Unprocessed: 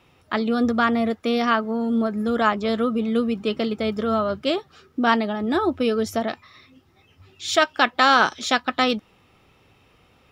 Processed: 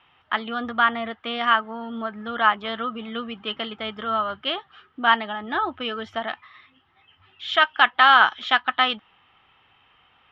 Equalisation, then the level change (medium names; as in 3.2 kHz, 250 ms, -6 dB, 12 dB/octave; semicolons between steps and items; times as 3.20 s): resonant low-pass 3.1 kHz, resonance Q 7.8; high-order bell 1.2 kHz +12.5 dB; -11.5 dB